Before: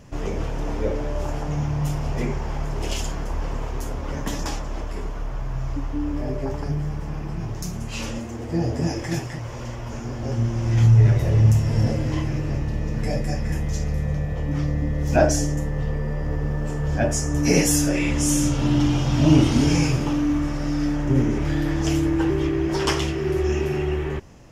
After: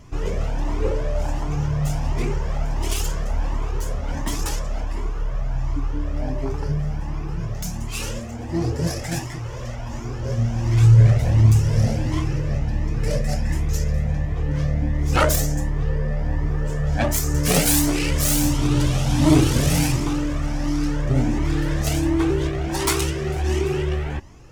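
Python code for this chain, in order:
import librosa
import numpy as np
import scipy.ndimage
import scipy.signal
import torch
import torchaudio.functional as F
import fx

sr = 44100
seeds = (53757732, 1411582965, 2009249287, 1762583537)

y = fx.self_delay(x, sr, depth_ms=0.51)
y = fx.dynamic_eq(y, sr, hz=8800.0, q=0.74, threshold_db=-48.0, ratio=4.0, max_db=7)
y = fx.comb_cascade(y, sr, direction='rising', hz=1.4)
y = y * 10.0 ** (5.0 / 20.0)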